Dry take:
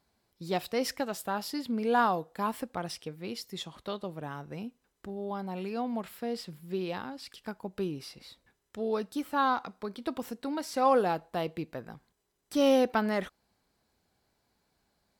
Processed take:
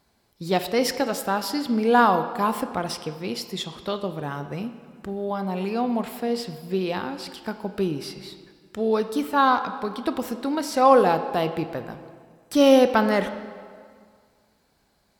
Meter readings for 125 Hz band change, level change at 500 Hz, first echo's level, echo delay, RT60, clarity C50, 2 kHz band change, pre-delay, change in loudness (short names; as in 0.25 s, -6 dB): +8.5 dB, +8.5 dB, none, none, 2.0 s, 11.0 dB, +8.5 dB, 21 ms, +8.5 dB